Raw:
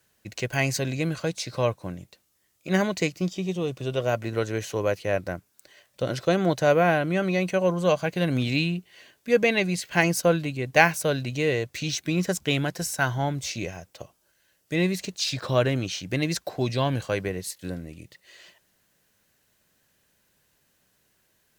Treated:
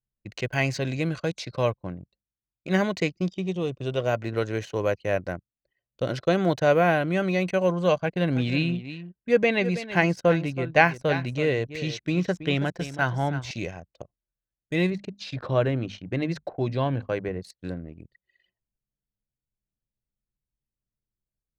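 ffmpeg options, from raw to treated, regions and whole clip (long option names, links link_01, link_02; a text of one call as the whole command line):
ffmpeg -i in.wav -filter_complex "[0:a]asettb=1/sr,asplit=3[link_01][link_02][link_03];[link_01]atrim=end=8.004[link_04];[link_02]atrim=start=8:end=13.51,asetpts=PTS-STARTPTS,afade=type=in:duration=0.004:curve=qsin,afade=type=out:start_time=5.506:duration=0.004:curve=qsin,aemphasis=mode=reproduction:type=cd,aecho=1:1:326:0.237,atrim=end_sample=242991[link_05];[link_03]atrim=start=13.506[link_06];[link_04][link_05]acrossfade=duration=0.004:curve1=hsin:curve2=qsin[link_07];[link_07][link_06]acrossfade=duration=0.004:curve1=qsin:curve2=hsin,asettb=1/sr,asplit=3[link_08][link_09][link_10];[link_08]atrim=end=14.904[link_11];[link_09]atrim=start=14.9:end=17.41,asetpts=PTS-STARTPTS,afade=type=in:duration=0.004:curve=qsin,afade=type=out:start_time=2.506:duration=0.004:curve=qsin,lowpass=frequency=1500:poles=1,bandreject=frequency=50:width_type=h:width=6,bandreject=frequency=100:width_type=h:width=6,bandreject=frequency=150:width_type=h:width=6,bandreject=frequency=200:width_type=h:width=6,bandreject=frequency=250:width_type=h:width=6[link_12];[link_10]atrim=start=17.406[link_13];[link_11][link_12]acrossfade=duration=0.004:curve1=hsin:curve2=qsin[link_14];[link_14][link_13]acrossfade=duration=0.004:curve1=qsin:curve2=hsin,acrossover=split=5000[link_15][link_16];[link_16]acompressor=threshold=-49dB:ratio=4:attack=1:release=60[link_17];[link_15][link_17]amix=inputs=2:normalize=0,anlmdn=0.398" out.wav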